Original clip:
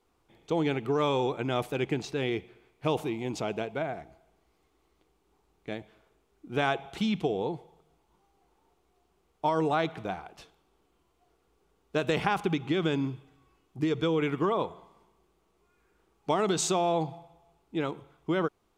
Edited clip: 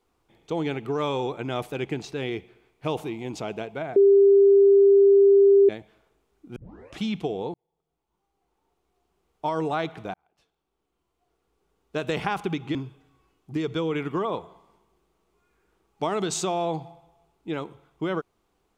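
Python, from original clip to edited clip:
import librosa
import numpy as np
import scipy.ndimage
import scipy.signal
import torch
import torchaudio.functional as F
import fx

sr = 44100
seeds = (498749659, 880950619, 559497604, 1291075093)

y = fx.edit(x, sr, fx.bleep(start_s=3.96, length_s=1.73, hz=397.0, db=-12.0),
    fx.tape_start(start_s=6.56, length_s=0.45),
    fx.fade_in_span(start_s=7.54, length_s=2.0),
    fx.fade_in_span(start_s=10.14, length_s=1.98),
    fx.cut(start_s=12.75, length_s=0.27), tone=tone)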